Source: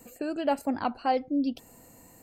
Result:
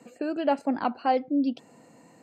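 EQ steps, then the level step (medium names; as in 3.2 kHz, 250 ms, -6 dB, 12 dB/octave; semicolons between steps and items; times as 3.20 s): high-pass 140 Hz 24 dB/octave; distance through air 110 m; +2.5 dB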